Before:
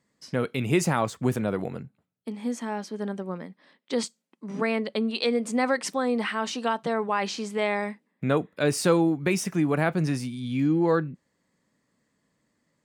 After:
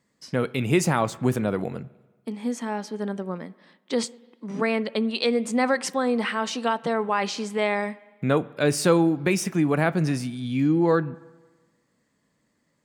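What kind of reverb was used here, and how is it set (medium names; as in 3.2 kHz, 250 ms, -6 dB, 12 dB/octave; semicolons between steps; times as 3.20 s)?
spring tank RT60 1.3 s, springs 47/60 ms, chirp 75 ms, DRR 20 dB; trim +2 dB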